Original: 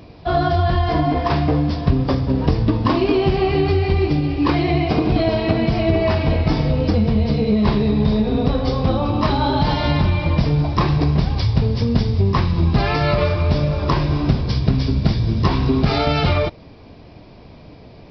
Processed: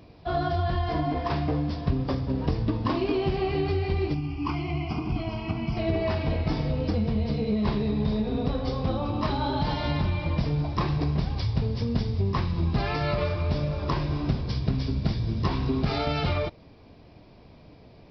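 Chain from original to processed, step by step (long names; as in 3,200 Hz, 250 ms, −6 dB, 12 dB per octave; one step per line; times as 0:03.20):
0:04.14–0:05.77: phaser with its sweep stopped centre 2,600 Hz, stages 8
level −9 dB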